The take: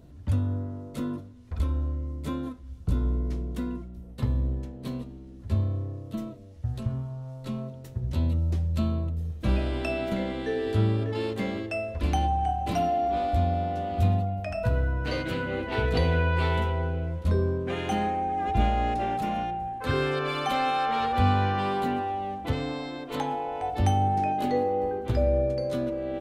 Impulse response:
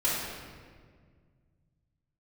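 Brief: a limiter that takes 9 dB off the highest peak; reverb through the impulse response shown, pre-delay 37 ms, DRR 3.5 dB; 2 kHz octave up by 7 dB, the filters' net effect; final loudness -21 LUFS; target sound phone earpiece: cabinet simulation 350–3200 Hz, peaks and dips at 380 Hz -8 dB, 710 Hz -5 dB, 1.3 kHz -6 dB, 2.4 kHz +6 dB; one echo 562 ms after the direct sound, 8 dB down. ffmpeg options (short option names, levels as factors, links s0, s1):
-filter_complex "[0:a]equalizer=f=2000:t=o:g=8,alimiter=limit=0.106:level=0:latency=1,aecho=1:1:562:0.398,asplit=2[s0][s1];[1:a]atrim=start_sample=2205,adelay=37[s2];[s1][s2]afir=irnorm=-1:irlink=0,volume=0.2[s3];[s0][s3]amix=inputs=2:normalize=0,highpass=350,equalizer=f=380:t=q:w=4:g=-8,equalizer=f=710:t=q:w=4:g=-5,equalizer=f=1300:t=q:w=4:g=-6,equalizer=f=2400:t=q:w=4:g=6,lowpass=f=3200:w=0.5412,lowpass=f=3200:w=1.3066,volume=3.35"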